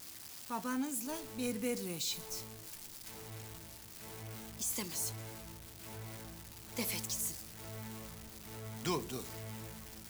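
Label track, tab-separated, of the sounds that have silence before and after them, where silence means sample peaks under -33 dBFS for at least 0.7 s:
4.610000	5.090000	sound
6.770000	7.290000	sound
8.850000	9.160000	sound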